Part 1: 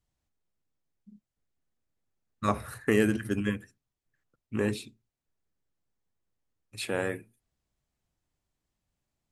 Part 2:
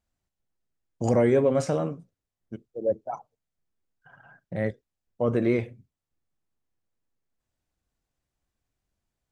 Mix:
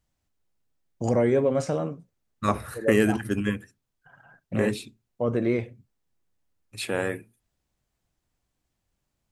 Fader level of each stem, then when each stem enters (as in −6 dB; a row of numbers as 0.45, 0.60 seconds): +3.0, −1.0 decibels; 0.00, 0.00 seconds